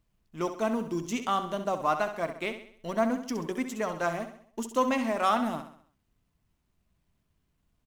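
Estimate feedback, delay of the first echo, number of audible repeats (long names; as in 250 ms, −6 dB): 47%, 66 ms, 4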